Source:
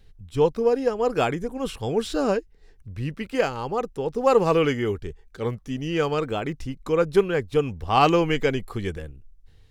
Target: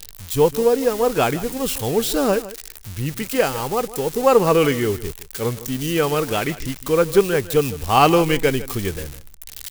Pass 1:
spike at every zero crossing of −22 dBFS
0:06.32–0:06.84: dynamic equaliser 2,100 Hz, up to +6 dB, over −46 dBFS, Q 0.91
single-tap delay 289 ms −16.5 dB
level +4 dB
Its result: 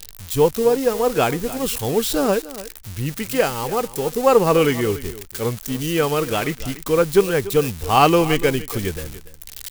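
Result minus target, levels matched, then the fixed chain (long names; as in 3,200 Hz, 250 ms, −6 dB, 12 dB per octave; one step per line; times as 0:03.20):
echo 133 ms late
spike at every zero crossing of −22 dBFS
0:06.32–0:06.84: dynamic equaliser 2,100 Hz, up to +6 dB, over −46 dBFS, Q 0.91
single-tap delay 156 ms −16.5 dB
level +4 dB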